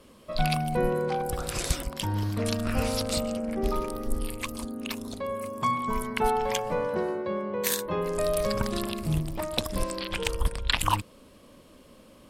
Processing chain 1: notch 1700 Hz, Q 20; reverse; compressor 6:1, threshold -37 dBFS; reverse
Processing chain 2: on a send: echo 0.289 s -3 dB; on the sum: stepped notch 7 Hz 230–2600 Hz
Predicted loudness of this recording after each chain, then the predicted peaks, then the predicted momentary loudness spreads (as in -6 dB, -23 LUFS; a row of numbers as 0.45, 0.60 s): -40.5, -29.5 LUFS; -19.0, -7.0 dBFS; 5, 7 LU